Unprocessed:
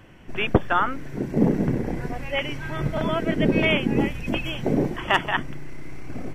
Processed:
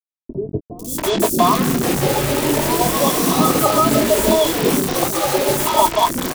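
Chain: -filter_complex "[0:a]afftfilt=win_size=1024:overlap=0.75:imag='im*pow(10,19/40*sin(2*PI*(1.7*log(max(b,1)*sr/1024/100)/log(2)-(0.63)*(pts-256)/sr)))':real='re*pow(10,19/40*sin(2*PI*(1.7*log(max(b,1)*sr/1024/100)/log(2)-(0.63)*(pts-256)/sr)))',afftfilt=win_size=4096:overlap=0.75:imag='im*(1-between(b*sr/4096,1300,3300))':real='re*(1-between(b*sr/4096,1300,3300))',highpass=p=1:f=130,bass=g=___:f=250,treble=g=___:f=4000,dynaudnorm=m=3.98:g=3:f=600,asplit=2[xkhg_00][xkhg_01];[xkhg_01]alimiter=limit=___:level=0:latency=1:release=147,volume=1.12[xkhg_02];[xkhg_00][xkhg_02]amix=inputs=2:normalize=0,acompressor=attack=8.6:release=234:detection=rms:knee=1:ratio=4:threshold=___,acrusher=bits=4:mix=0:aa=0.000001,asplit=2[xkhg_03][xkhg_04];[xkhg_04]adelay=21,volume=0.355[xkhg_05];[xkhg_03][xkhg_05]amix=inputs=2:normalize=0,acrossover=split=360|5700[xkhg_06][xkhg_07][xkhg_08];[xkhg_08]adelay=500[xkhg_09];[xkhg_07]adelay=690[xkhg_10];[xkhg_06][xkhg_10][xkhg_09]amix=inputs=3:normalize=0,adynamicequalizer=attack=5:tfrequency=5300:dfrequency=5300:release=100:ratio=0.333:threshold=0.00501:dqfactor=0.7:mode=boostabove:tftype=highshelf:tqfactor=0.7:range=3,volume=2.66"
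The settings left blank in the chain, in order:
-11, -5, 0.299, 0.0891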